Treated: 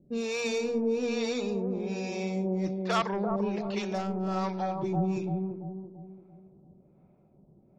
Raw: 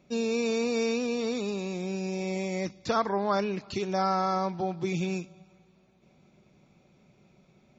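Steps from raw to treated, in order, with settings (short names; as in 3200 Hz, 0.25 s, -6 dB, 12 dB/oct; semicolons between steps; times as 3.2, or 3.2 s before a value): sine folder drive 6 dB, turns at -14 dBFS; notches 60/120/180/240 Hz; low-pass opened by the level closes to 700 Hz, open at -16 dBFS; harmonic tremolo 1.2 Hz, depth 100%, crossover 480 Hz; analogue delay 0.338 s, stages 2048, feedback 43%, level -3 dB; gain -5.5 dB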